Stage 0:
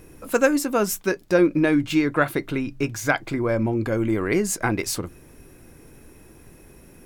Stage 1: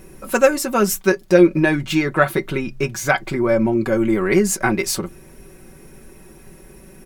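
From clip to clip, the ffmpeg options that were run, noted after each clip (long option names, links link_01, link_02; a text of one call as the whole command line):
ffmpeg -i in.wav -af "aecho=1:1:5.3:0.67,volume=3dB" out.wav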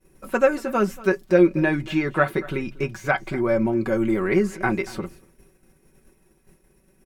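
ffmpeg -i in.wav -filter_complex "[0:a]acrossover=split=3000[link_01][link_02];[link_02]acompressor=threshold=-41dB:ratio=4:attack=1:release=60[link_03];[link_01][link_03]amix=inputs=2:normalize=0,aecho=1:1:234:0.106,agate=range=-33dB:threshold=-33dB:ratio=3:detection=peak,volume=-4dB" out.wav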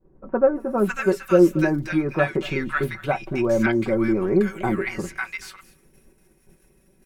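ffmpeg -i in.wav -filter_complex "[0:a]acrossover=split=1200[link_01][link_02];[link_02]adelay=550[link_03];[link_01][link_03]amix=inputs=2:normalize=0,volume=1dB" out.wav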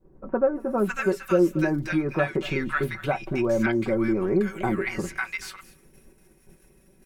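ffmpeg -i in.wav -af "acompressor=threshold=-29dB:ratio=1.5,volume=1.5dB" out.wav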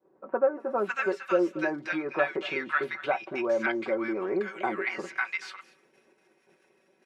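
ffmpeg -i in.wav -af "highpass=470,lowpass=4100" out.wav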